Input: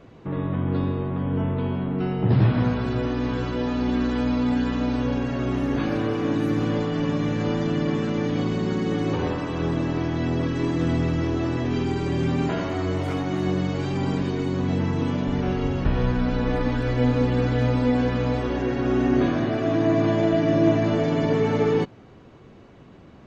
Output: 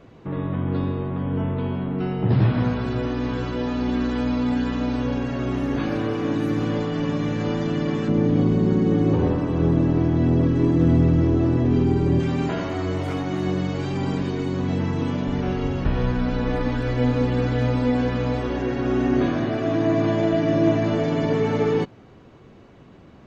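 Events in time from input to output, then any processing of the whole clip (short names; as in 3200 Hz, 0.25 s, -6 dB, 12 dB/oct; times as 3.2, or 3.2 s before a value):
8.08–12.2 tilt shelf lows +7 dB, about 810 Hz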